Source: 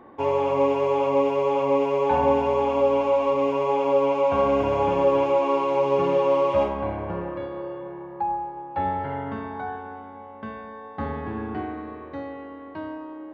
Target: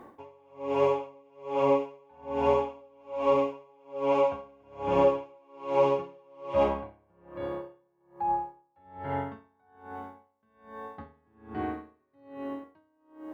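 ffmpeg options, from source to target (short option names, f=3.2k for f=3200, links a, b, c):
-filter_complex "[0:a]asettb=1/sr,asplit=3[a][b][c];[a]atrim=end=11.994[d];[b]atrim=start=11.99:end=12.64,asetpts=PTS-STARTPTS,afade=t=in:d=0.004:c=qsin,afade=t=out:st=0.646:d=0.004:c=qsin,aecho=1:1:7.5:0.94,atrim=end_sample=28665[e];[c]atrim=start=12.636[f];[d][e]acrossfade=d=0.004:c1=hsin:c2=qsin[g];[g][f]acrossfade=d=0.004:c1=qsin:c2=hsin,acrusher=bits=11:mix=0:aa=0.000001,aeval=exprs='val(0)*pow(10,-37*(0.5-0.5*cos(2*PI*1.2*n/s))/20)':c=same"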